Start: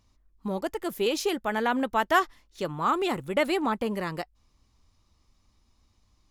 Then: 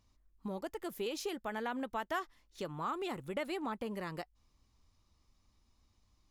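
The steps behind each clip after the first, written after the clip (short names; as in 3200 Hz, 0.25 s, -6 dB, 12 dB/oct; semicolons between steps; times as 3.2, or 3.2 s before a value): compressor 2:1, threshold -34 dBFS, peak gain reduction 10 dB; gain -5.5 dB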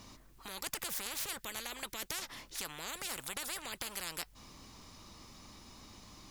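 spectral compressor 10:1; gain +4 dB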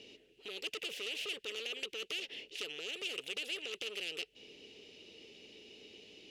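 double band-pass 1100 Hz, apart 2.7 oct; core saturation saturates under 3500 Hz; gain +13.5 dB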